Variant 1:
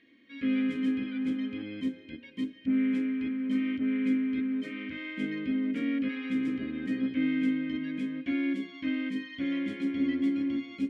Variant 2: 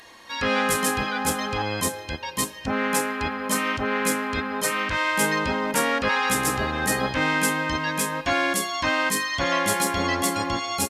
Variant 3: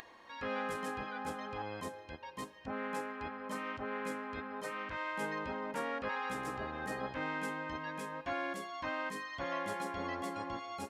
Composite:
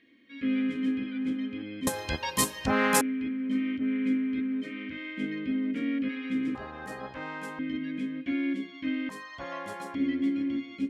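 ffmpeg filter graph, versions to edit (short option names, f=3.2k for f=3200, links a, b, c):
-filter_complex "[2:a]asplit=2[a][b];[0:a]asplit=4[c][d][e][f];[c]atrim=end=1.872[g];[1:a]atrim=start=1.868:end=3.012[h];[d]atrim=start=3.008:end=6.552[i];[a]atrim=start=6.548:end=7.592[j];[e]atrim=start=7.588:end=9.092[k];[b]atrim=start=9.088:end=9.952[l];[f]atrim=start=9.948[m];[g][h]acrossfade=d=0.004:c1=hsin:c2=hsin[n];[n][i]acrossfade=d=0.004:c1=hsin:c2=hsin[o];[o][j]acrossfade=d=0.004:c1=hsin:c2=hsin[p];[p][k]acrossfade=d=0.004:c1=hsin:c2=hsin[q];[q][l]acrossfade=d=0.004:c1=hsin:c2=hsin[r];[r][m]acrossfade=d=0.004:c1=hsin:c2=hsin"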